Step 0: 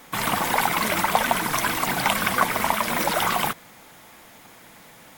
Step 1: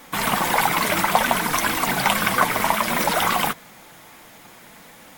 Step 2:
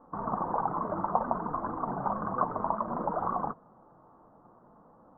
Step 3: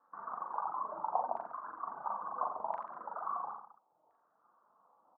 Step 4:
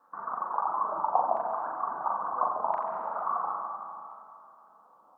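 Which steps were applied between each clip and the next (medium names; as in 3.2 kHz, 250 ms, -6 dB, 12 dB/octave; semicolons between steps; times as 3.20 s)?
flange 0.6 Hz, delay 3.5 ms, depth 3.5 ms, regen -58%; trim +6.5 dB
elliptic low-pass 1.2 kHz, stop band 50 dB; trim -8 dB
reverb removal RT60 1.2 s; LFO band-pass saw down 0.73 Hz 710–1700 Hz; reverse bouncing-ball echo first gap 40 ms, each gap 1.15×, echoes 5; trim -4 dB
algorithmic reverb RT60 2.6 s, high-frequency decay 0.9×, pre-delay 105 ms, DRR 4.5 dB; trim +7.5 dB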